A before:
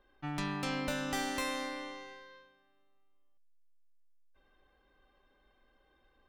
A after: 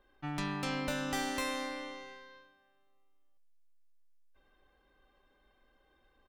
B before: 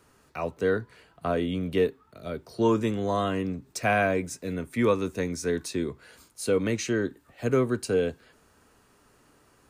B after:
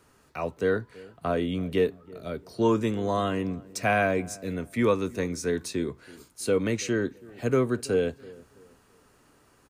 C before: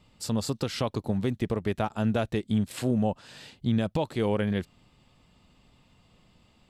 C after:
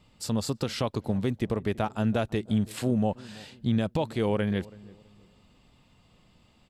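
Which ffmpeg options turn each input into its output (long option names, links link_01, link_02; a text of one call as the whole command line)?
ffmpeg -i in.wav -filter_complex "[0:a]asplit=2[link_01][link_02];[link_02]adelay=328,lowpass=frequency=860:poles=1,volume=-20.5dB,asplit=2[link_03][link_04];[link_04]adelay=328,lowpass=frequency=860:poles=1,volume=0.36,asplit=2[link_05][link_06];[link_06]adelay=328,lowpass=frequency=860:poles=1,volume=0.36[link_07];[link_01][link_03][link_05][link_07]amix=inputs=4:normalize=0" out.wav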